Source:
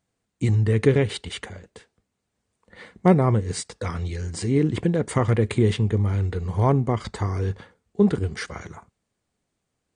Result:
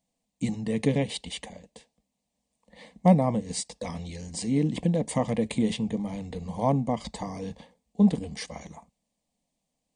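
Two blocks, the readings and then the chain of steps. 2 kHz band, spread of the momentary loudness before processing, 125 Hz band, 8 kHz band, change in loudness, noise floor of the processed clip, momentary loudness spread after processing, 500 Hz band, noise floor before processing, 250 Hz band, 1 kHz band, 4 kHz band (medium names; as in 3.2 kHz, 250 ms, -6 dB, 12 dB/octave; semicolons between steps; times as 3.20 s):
-8.0 dB, 15 LU, -8.5 dB, -0.5 dB, -5.0 dB, -82 dBFS, 15 LU, -6.0 dB, -79 dBFS, -1.5 dB, -2.5 dB, -2.0 dB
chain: static phaser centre 380 Hz, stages 6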